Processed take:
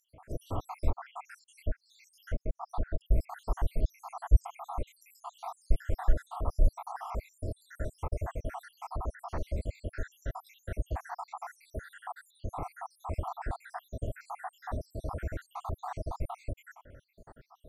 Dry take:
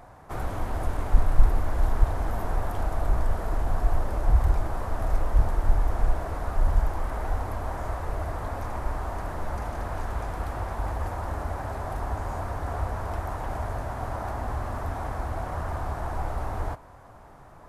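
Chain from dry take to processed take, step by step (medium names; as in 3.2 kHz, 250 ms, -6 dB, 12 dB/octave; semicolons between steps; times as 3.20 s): random holes in the spectrogram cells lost 81%; 0.89–3.01 s: low-pass that closes with the level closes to 1.1 kHz, closed at -26.5 dBFS; loudspeaker Doppler distortion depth 0.18 ms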